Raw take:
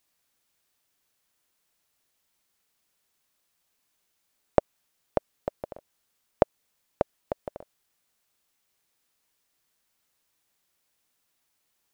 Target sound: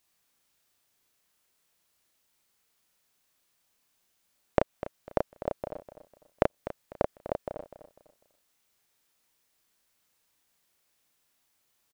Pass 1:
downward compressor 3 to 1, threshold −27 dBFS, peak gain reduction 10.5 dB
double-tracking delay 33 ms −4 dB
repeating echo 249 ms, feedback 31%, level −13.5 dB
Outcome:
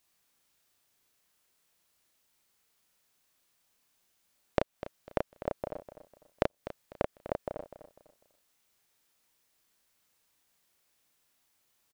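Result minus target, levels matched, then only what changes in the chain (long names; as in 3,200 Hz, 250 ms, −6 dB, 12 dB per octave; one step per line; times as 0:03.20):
downward compressor: peak gain reduction +4.5 dB
change: downward compressor 3 to 1, threshold −20 dBFS, peak gain reduction 6 dB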